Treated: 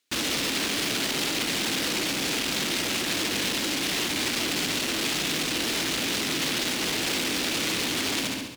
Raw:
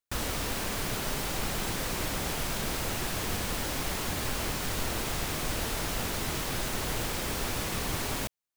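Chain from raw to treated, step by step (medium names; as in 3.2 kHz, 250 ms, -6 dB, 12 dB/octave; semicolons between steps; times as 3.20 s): peaking EQ 280 Hz +12.5 dB 1.1 oct; feedback delay 69 ms, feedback 58%, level -12.5 dB; on a send at -15 dB: reverberation RT60 1.1 s, pre-delay 6 ms; on the sum: peak limiter -26 dBFS, peak gain reduction 11 dB; hard clipper -36 dBFS, distortion -9 dB; frequency weighting D; trim +8.5 dB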